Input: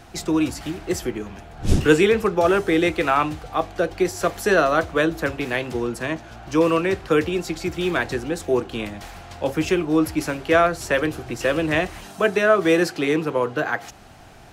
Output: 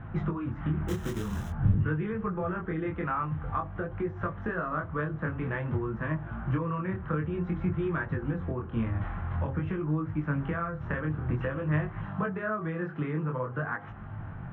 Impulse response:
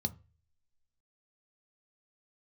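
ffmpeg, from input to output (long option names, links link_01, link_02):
-filter_complex "[0:a]lowpass=frequency=1900:width=0.5412,lowpass=frequency=1900:width=1.3066,acompressor=threshold=-30dB:ratio=6,asettb=1/sr,asplit=3[link_01][link_02][link_03];[link_01]atrim=end=0.884[link_04];[link_02]atrim=start=0.88:end=1.5,asetpts=PTS-STARTPTS,afade=type=in:duration=0.004:curve=qsin,afade=type=out:start_time=0.616:duration=0.004:curve=qsin,acrusher=bits=2:mode=log:mix=0:aa=0.000001[link_05];[link_03]atrim=start=1.496[link_06];[link_04][link_05]acrossfade=duration=0.004:curve1=hsin:curve2=qsin[link_07];[link_07][link_06]acrossfade=duration=0.004:curve1=qsin:curve2=hsin,flanger=delay=19:depth=7.5:speed=0.5,asplit=2[link_08][link_09];[1:a]atrim=start_sample=2205[link_10];[link_09][link_10]afir=irnorm=-1:irlink=0,volume=-7.5dB[link_11];[link_08][link_11]amix=inputs=2:normalize=0,volume=5.5dB"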